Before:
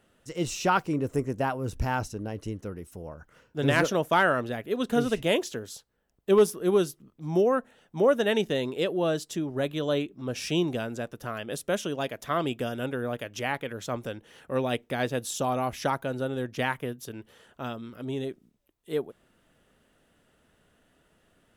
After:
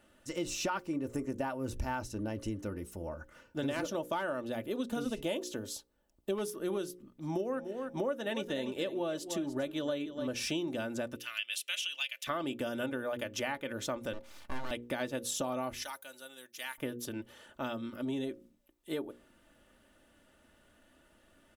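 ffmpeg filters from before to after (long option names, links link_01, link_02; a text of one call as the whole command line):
ffmpeg -i in.wav -filter_complex "[0:a]asettb=1/sr,asplit=3[link_01][link_02][link_03];[link_01]atrim=end=3.664[link_04];[link_02]atrim=start=3.66:end=6.35,asetpts=PTS-STARTPTS,afade=type=in:duration=0.004:curve=qsin,afade=type=out:start_time=2.686:duration=0.004:curve=qsin,equalizer=frequency=1800:width=1.5:gain=-6[link_05];[link_03]atrim=start=6.346[link_06];[link_04][link_05]acrossfade=duration=0.004:curve1=hsin:curve2=qsin[link_07];[link_07][link_06]acrossfade=duration=0.004:curve1=qsin:curve2=hsin,asplit=3[link_08][link_09][link_10];[link_08]afade=type=out:start_time=7.4:duration=0.02[link_11];[link_09]aecho=1:1:293|586:0.211|0.038,afade=type=in:start_time=7.4:duration=0.02,afade=type=out:start_time=10.26:duration=0.02[link_12];[link_10]afade=type=in:start_time=10.26:duration=0.02[link_13];[link_11][link_12][link_13]amix=inputs=3:normalize=0,asettb=1/sr,asplit=3[link_14][link_15][link_16];[link_14]atrim=end=11.164[link_17];[link_15]atrim=start=11.16:end=12.27,asetpts=PTS-STARTPTS,afade=type=in:duration=0.004:curve=qsin,afade=type=out:start_time=1.106:duration=0.004:curve=qsin,highpass=frequency=2700:width_type=q:width=4[link_18];[link_16]atrim=start=12.266[link_19];[link_17][link_18]acrossfade=duration=0.004:curve1=hsin:curve2=qsin[link_20];[link_20][link_19]acrossfade=duration=0.004:curve1=qsin:curve2=hsin,asettb=1/sr,asplit=3[link_21][link_22][link_23];[link_21]atrim=end=14.134[link_24];[link_22]atrim=start=14.13:end=14.71,asetpts=PTS-STARTPTS,afade=type=in:duration=0.004:curve=qsin,afade=type=out:start_time=0.576:duration=0.004:curve=qsin,aeval=exprs='abs(val(0))':channel_layout=same[link_25];[link_23]atrim=start=14.706[link_26];[link_24][link_25]acrossfade=duration=0.004:curve1=hsin:curve2=qsin[link_27];[link_27][link_26]acrossfade=duration=0.004:curve1=qsin:curve2=hsin,asettb=1/sr,asplit=3[link_28][link_29][link_30];[link_28]atrim=end=15.834[link_31];[link_29]atrim=start=15.83:end=16.78,asetpts=PTS-STARTPTS,afade=type=in:duration=0.004:curve=qsin,afade=type=out:start_time=0.946:duration=0.004:curve=qsin,aderivative[link_32];[link_30]atrim=start=16.776[link_33];[link_31][link_32]acrossfade=duration=0.004:curve1=hsin:curve2=qsin[link_34];[link_34][link_33]acrossfade=duration=0.004:curve1=qsin:curve2=hsin,bandreject=frequency=60:width_type=h:width=6,bandreject=frequency=120:width_type=h:width=6,bandreject=frequency=180:width_type=h:width=6,bandreject=frequency=240:width_type=h:width=6,bandreject=frequency=300:width_type=h:width=6,bandreject=frequency=360:width_type=h:width=6,bandreject=frequency=420:width_type=h:width=6,bandreject=frequency=480:width_type=h:width=6,bandreject=frequency=540:width_type=h:width=6,aecho=1:1:3.4:0.51,acompressor=threshold=-32dB:ratio=6" out.wav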